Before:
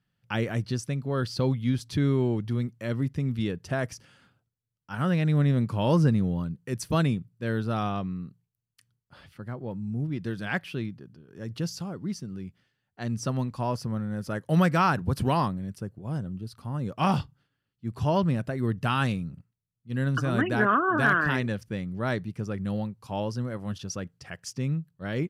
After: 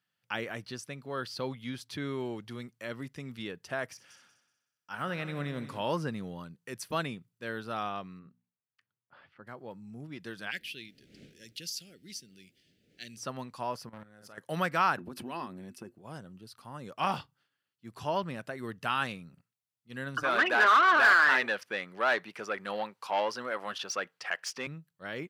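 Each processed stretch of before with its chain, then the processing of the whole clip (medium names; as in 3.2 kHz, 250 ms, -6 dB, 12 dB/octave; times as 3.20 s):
3.87–5.82 s: de-esser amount 90% + multi-head delay 62 ms, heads first and third, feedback 46%, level -15 dB
8.19–9.47 s: low-pass 1.9 kHz + hum notches 60/120/180/240 Hz
10.50–13.17 s: wind noise 180 Hz -33 dBFS + Butterworth band-stop 1 kHz, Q 0.52 + tilt shelf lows -7.5 dB, about 1.1 kHz
13.89–14.38 s: doubling 46 ms -6 dB + level held to a coarse grid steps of 14 dB + valve stage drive 30 dB, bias 0.6
14.98–15.98 s: small resonant body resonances 250/350/2600 Hz, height 15 dB, ringing for 95 ms + compression 10:1, threshold -26 dBFS
20.23–24.67 s: overdrive pedal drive 21 dB, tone 2.5 kHz, clips at -10.5 dBFS + high-pass 380 Hz 6 dB/octave
whole clip: high-pass 940 Hz 6 dB/octave; dynamic bell 7.2 kHz, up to -6 dB, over -52 dBFS, Q 0.71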